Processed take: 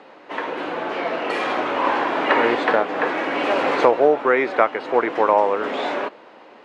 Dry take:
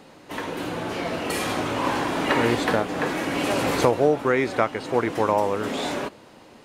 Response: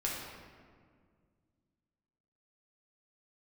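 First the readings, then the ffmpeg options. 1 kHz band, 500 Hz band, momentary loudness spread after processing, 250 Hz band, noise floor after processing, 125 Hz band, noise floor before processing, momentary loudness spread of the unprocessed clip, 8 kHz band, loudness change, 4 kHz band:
+5.5 dB, +4.0 dB, 10 LU, −1.0 dB, −46 dBFS, −12.5 dB, −49 dBFS, 9 LU, below −10 dB, +3.5 dB, −0.5 dB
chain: -af "highpass=410,lowpass=2500,volume=6dB"

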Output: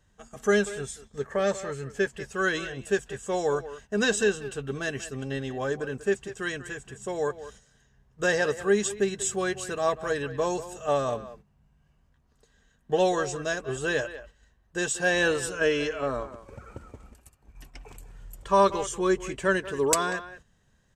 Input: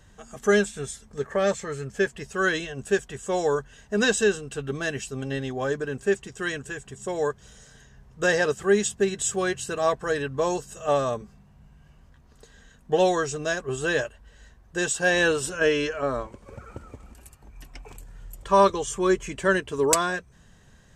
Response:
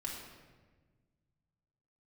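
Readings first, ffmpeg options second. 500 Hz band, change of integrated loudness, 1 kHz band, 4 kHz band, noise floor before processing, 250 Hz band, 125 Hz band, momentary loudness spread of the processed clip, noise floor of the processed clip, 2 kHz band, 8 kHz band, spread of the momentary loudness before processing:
−2.5 dB, −2.5 dB, −2.5 dB, −2.5 dB, −55 dBFS, −2.5 dB, −2.5 dB, 13 LU, −66 dBFS, −2.5 dB, −2.5 dB, 13 LU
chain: -filter_complex "[0:a]asplit=2[link_01][link_02];[link_02]adelay=190,highpass=300,lowpass=3400,asoftclip=type=hard:threshold=-16dB,volume=-13dB[link_03];[link_01][link_03]amix=inputs=2:normalize=0,agate=range=-9dB:threshold=-46dB:ratio=16:detection=peak,volume=-2.5dB"

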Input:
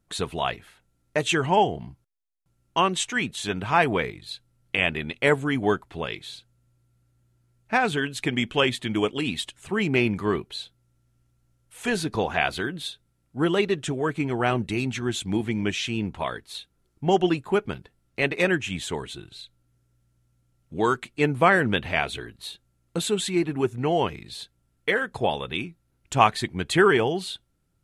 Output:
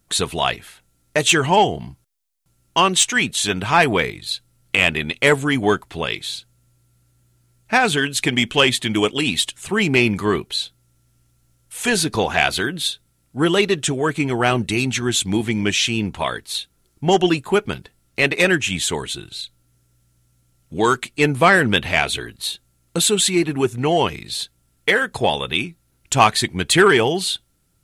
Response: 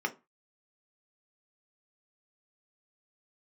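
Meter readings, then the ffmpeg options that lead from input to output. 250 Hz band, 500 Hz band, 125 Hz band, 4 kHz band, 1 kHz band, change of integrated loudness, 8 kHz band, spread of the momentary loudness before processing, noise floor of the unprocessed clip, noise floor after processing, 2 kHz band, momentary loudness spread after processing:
+5.0 dB, +5.0 dB, +5.0 dB, +10.5 dB, +5.0 dB, +6.5 dB, +13.5 dB, 17 LU, −70 dBFS, −64 dBFS, +7.5 dB, 12 LU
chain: -af "highshelf=frequency=3100:gain=10,acontrast=63,volume=-1dB"

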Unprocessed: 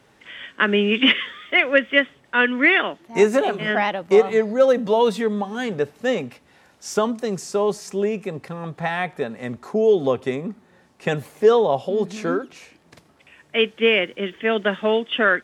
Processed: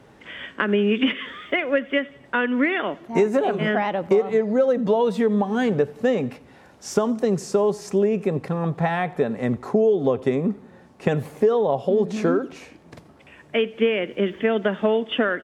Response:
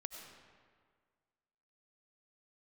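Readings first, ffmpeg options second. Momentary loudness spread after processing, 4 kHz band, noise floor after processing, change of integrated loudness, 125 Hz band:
7 LU, −8.0 dB, −51 dBFS, −2.0 dB, +4.5 dB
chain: -af "acompressor=threshold=-23dB:ratio=6,tiltshelf=frequency=1300:gain=5,aecho=1:1:90|180|270:0.0708|0.0368|0.0191,volume=3dB"

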